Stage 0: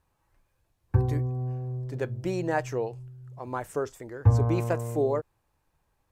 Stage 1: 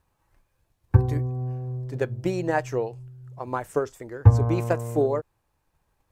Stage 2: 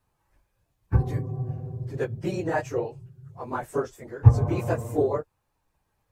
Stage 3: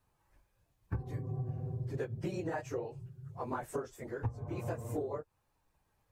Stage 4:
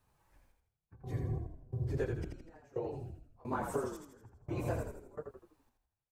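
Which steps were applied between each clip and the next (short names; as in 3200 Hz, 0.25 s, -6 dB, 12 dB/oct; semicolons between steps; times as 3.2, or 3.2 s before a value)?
transient shaper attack +5 dB, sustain -1 dB; gain +1.5 dB
phase scrambler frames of 50 ms; gain -2 dB
compressor 16:1, threshold -31 dBFS, peak gain reduction 25 dB; gain -2 dB
step gate "xxx...xx.." 87 bpm -24 dB; frequency-shifting echo 82 ms, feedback 45%, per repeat -36 Hz, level -5 dB; gain +1.5 dB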